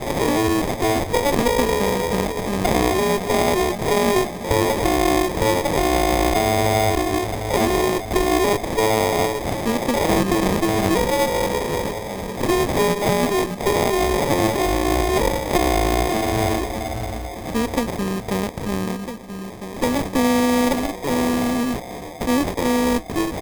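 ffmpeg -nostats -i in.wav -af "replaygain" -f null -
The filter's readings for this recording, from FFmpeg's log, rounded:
track_gain = +2.2 dB
track_peak = 0.396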